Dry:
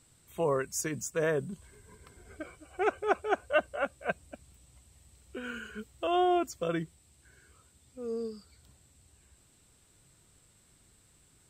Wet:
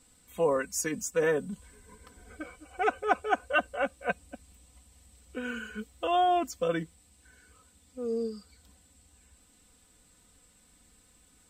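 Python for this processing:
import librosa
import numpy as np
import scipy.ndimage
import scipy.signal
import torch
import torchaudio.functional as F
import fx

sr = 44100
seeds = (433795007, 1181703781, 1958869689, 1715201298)

y = x + 0.78 * np.pad(x, (int(4.0 * sr / 1000.0), 0))[:len(x)]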